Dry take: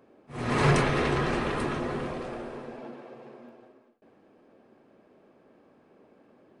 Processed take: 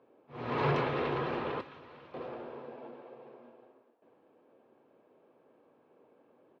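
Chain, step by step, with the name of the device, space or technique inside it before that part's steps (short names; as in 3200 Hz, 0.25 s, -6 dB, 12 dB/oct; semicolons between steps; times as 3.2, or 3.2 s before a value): 1.61–2.14 passive tone stack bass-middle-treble 5-5-5; frequency-shifting delay pedal into a guitar cabinet (frequency-shifting echo 0.45 s, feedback 52%, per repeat +62 Hz, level -24 dB; speaker cabinet 110–3900 Hz, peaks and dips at 200 Hz -7 dB, 490 Hz +5 dB, 940 Hz +5 dB, 1900 Hz -4 dB); gain -7 dB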